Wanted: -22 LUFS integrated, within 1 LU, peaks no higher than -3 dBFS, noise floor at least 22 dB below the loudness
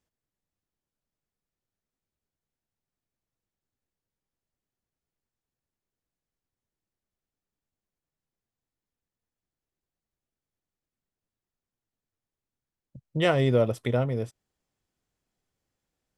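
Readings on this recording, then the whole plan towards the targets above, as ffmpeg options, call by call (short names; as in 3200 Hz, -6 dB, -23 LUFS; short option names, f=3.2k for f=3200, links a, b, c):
loudness -26.0 LUFS; peak -11.0 dBFS; loudness target -22.0 LUFS
-> -af "volume=4dB"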